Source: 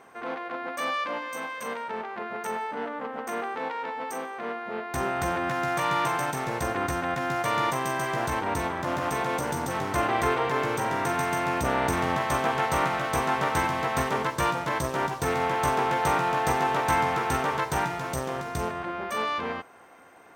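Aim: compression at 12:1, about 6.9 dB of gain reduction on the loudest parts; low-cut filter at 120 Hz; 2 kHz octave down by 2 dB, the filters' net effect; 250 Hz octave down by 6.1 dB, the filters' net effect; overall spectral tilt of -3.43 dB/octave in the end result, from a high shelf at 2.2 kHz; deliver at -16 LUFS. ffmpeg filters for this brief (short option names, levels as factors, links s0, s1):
-af "highpass=120,equalizer=f=250:t=o:g=-8.5,equalizer=f=2000:t=o:g=-5.5,highshelf=f=2200:g=6,acompressor=threshold=0.0398:ratio=12,volume=6.68"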